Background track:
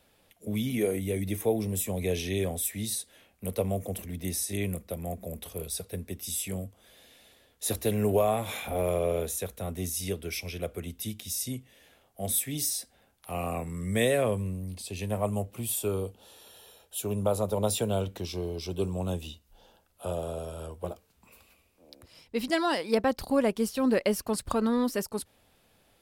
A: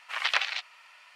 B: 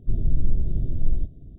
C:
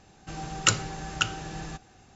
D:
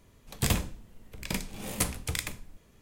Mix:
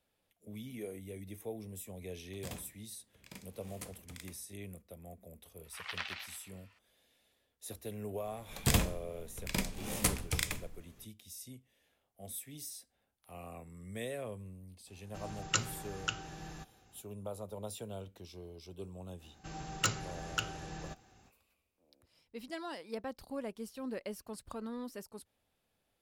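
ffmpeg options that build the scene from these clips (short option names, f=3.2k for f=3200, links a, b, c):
-filter_complex "[4:a]asplit=2[a][b];[3:a]asplit=2[c][d];[0:a]volume=-15.5dB[e];[a]highpass=79[f];[1:a]aecho=1:1:124|248|372|496:0.531|0.149|0.0416|0.0117[g];[d]asoftclip=type=hard:threshold=-14dB[h];[f]atrim=end=2.81,asetpts=PTS-STARTPTS,volume=-18dB,afade=t=in:d=0.004:c=hsin,afade=t=out:st=2.806:d=0.004:c=hsin,adelay=2010[i];[g]atrim=end=1.15,asetpts=PTS-STARTPTS,volume=-14.5dB,afade=t=in:d=0.004:c=hsin,afade=t=out:st=1.146:d=0.004:c=hsin,adelay=5640[j];[b]atrim=end=2.81,asetpts=PTS-STARTPTS,volume=-1.5dB,afade=t=in:d=0.004:c=hsin,afade=t=out:st=2.806:d=0.004:c=hsin,adelay=8240[k];[c]atrim=end=2.15,asetpts=PTS-STARTPTS,volume=-9.5dB,afade=t=in:d=0.004:c=hsin,afade=t=out:st=2.146:d=0.004:c=hsin,adelay=14870[l];[h]atrim=end=2.15,asetpts=PTS-STARTPTS,volume=-7.5dB,afade=t=in:d=0.05,afade=t=out:st=2.1:d=0.05,adelay=19170[m];[e][i][j][k][l][m]amix=inputs=6:normalize=0"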